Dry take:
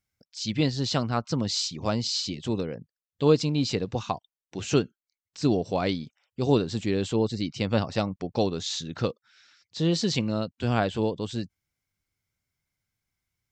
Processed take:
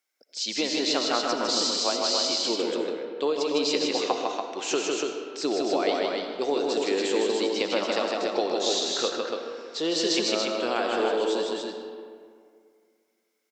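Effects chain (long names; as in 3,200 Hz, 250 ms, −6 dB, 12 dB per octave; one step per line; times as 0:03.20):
high-pass filter 350 Hz 24 dB per octave
downward compressor, threshold −27 dBFS, peak gain reduction 10.5 dB
0:01.55–0:02.08: frequency shifter +22 Hz
multi-tap delay 156/287 ms −3.5/−4 dB
on a send at −5 dB: convolution reverb RT60 2.2 s, pre-delay 40 ms
on the sum: level +4 dB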